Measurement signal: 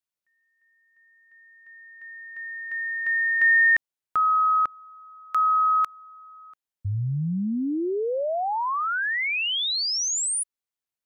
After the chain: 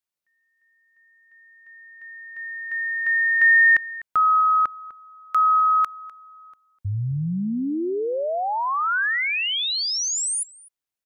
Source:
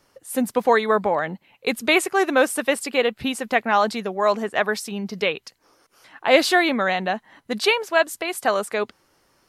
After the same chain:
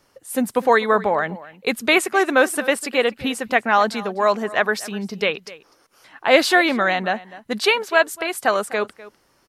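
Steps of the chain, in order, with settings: dynamic EQ 1500 Hz, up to +3 dB, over -37 dBFS, Q 1.7; outdoor echo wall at 43 m, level -18 dB; gain +1 dB

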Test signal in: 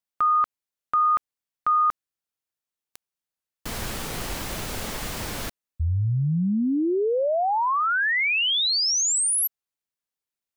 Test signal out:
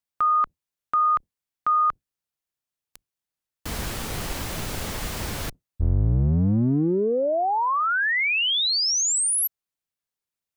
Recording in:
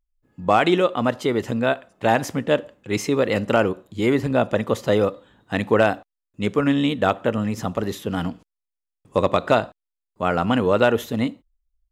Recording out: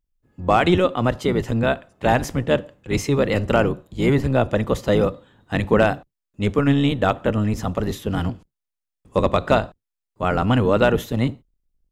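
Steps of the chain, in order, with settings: octaver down 1 oct, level 0 dB

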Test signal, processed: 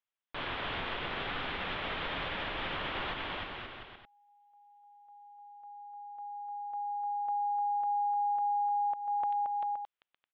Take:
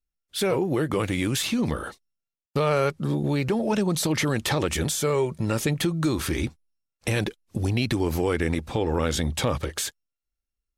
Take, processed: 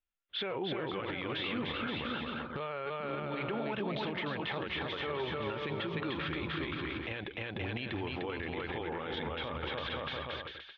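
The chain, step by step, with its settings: elliptic low-pass 3400 Hz, stop band 60 dB; low shelf 400 Hz -12 dB; on a send: bouncing-ball echo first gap 0.3 s, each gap 0.75×, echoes 5; on the sum: compressor 6:1, threshold -32 dBFS; limiter -29.5 dBFS; gain +2.5 dB

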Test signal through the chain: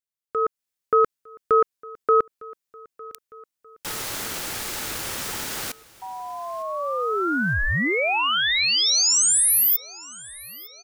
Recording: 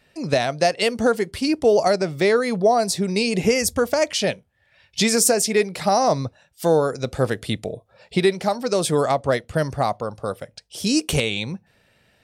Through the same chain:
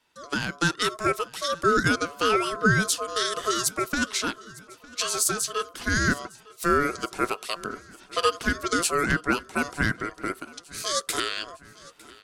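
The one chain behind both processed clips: tone controls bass -13 dB, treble +4 dB; AGC gain up to 12 dB; ring modulator 860 Hz; feedback echo 0.906 s, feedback 56%, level -22 dB; gain -6.5 dB

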